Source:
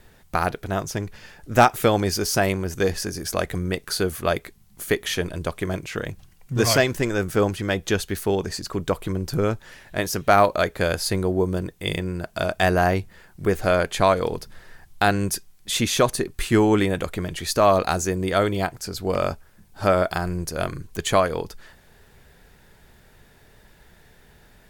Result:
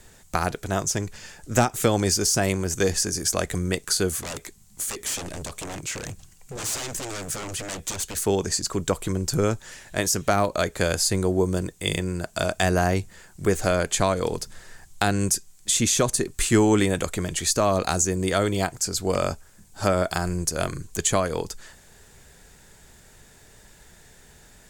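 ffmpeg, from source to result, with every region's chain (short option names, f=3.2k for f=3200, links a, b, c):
-filter_complex "[0:a]asettb=1/sr,asplit=3[a][b][c];[a]atrim=end=4.194[d];[b]atrim=start=4.19:end=8.17,asetpts=PTS-STARTPTS,afade=t=in:d=0.004:c=qsin,afade=t=out:st=3.976:d=0.004:c=qsin,acompressor=threshold=-23dB:ratio=4:attack=3.2:release=140:knee=1:detection=peak,aeval=exprs='0.0355*(abs(mod(val(0)/0.0355+3,4)-2)-1)':c=same[e];[c]atrim=start=8.166[f];[d][e]acrossfade=d=0.004:c1=hsin:c2=qsin[g];[g][f]acrossfade=d=0.004:c1=qsin:c2=hsin,equalizer=f=7.4k:t=o:w=0.88:g=14,acrossover=split=360[h][i];[i]acompressor=threshold=-20dB:ratio=4[j];[h][j]amix=inputs=2:normalize=0"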